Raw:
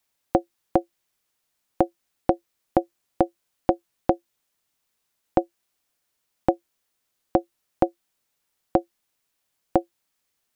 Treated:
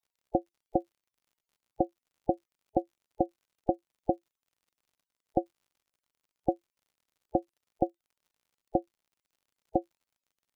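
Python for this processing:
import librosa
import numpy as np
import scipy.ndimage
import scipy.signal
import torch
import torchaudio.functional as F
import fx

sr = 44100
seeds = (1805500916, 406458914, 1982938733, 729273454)

y = fx.spec_topn(x, sr, count=32)
y = fx.dmg_crackle(y, sr, seeds[0], per_s=68.0, level_db=-52.0)
y = fx.notch(y, sr, hz=1700.0, q=14.0)
y = F.gain(torch.from_numpy(y), -7.0).numpy()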